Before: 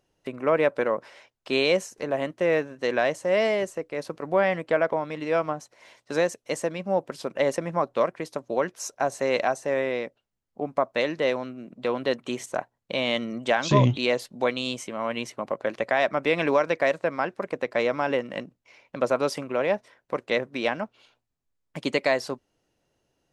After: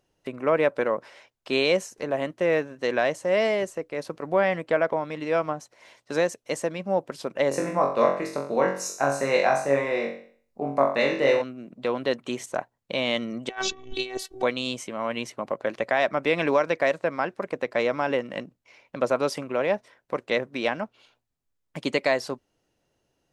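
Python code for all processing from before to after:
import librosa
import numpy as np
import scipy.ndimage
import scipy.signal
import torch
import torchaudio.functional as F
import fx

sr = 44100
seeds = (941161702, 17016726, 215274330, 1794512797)

y = fx.chain(x, sr, fx.notch(hz=3200.0, q=5.7),
    fx.room_flutter(wall_m=3.7, rt60_s=0.49), at=(7.49, 11.42))
y = fx.chain(y, sr, fx.robotise(hz=381.0),
    fx.over_compress(threshold_db=-31.0, ratio=-0.5), at=(13.49, 14.43))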